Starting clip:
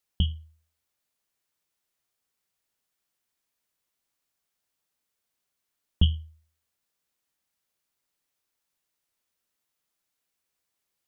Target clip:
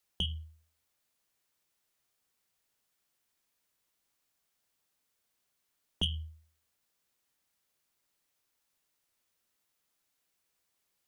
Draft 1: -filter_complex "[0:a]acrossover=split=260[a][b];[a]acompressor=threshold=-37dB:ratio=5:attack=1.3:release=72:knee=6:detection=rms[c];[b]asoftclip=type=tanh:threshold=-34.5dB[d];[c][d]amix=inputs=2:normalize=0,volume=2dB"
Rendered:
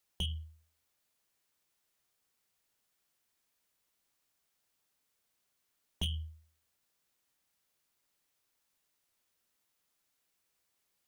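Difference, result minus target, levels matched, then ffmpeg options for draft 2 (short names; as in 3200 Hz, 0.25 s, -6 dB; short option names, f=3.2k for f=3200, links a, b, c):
soft clip: distortion +9 dB
-filter_complex "[0:a]acrossover=split=260[a][b];[a]acompressor=threshold=-37dB:ratio=5:attack=1.3:release=72:knee=6:detection=rms[c];[b]asoftclip=type=tanh:threshold=-24.5dB[d];[c][d]amix=inputs=2:normalize=0,volume=2dB"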